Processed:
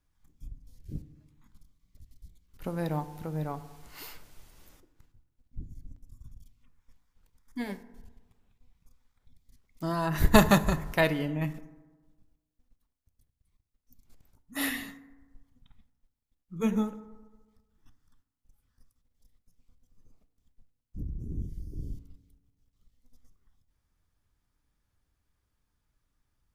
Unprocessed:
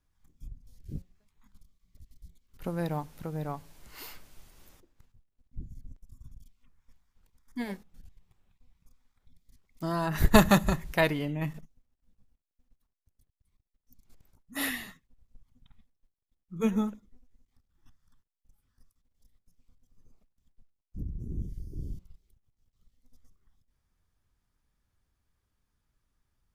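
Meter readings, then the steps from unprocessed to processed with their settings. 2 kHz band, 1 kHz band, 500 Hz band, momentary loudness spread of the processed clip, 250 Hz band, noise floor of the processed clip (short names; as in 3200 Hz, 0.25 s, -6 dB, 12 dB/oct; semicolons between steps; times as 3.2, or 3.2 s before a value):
+0.5 dB, +0.5 dB, +0.5 dB, 23 LU, 0.0 dB, -81 dBFS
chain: FDN reverb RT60 1.3 s, low-frequency decay 1×, high-frequency decay 0.4×, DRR 12.5 dB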